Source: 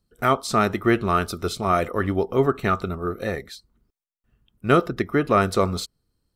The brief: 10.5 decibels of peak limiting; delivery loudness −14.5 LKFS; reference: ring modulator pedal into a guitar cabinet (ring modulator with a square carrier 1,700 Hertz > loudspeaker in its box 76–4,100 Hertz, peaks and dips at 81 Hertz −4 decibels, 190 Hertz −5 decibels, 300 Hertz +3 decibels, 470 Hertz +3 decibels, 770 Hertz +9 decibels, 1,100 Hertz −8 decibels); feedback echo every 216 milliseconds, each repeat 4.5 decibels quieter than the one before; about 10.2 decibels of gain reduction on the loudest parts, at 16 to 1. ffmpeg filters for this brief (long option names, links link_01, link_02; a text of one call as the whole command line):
ffmpeg -i in.wav -af "acompressor=threshold=-23dB:ratio=16,alimiter=limit=-22dB:level=0:latency=1,aecho=1:1:216|432|648|864|1080|1296|1512|1728|1944:0.596|0.357|0.214|0.129|0.0772|0.0463|0.0278|0.0167|0.01,aeval=exprs='val(0)*sgn(sin(2*PI*1700*n/s))':channel_layout=same,highpass=76,equalizer=frequency=81:width_type=q:width=4:gain=-4,equalizer=frequency=190:width_type=q:width=4:gain=-5,equalizer=frequency=300:width_type=q:width=4:gain=3,equalizer=frequency=470:width_type=q:width=4:gain=3,equalizer=frequency=770:width_type=q:width=4:gain=9,equalizer=frequency=1100:width_type=q:width=4:gain=-8,lowpass=frequency=4100:width=0.5412,lowpass=frequency=4100:width=1.3066,volume=16.5dB" out.wav